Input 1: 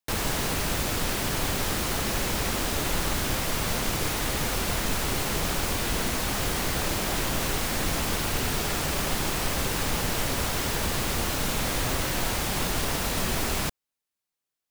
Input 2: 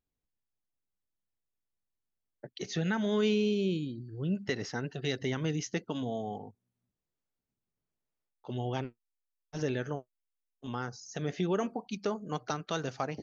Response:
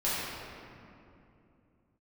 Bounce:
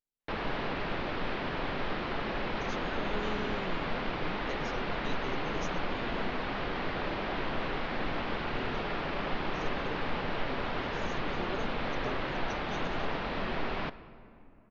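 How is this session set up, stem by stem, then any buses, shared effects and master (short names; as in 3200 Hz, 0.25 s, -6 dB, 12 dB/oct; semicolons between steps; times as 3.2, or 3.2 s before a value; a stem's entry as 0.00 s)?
-3.0 dB, 0.20 s, send -23.5 dB, Bessel low-pass 2300 Hz, order 8
-9.5 dB, 0.00 s, no send, dry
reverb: on, RT60 2.7 s, pre-delay 5 ms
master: bell 71 Hz -11.5 dB 2 oct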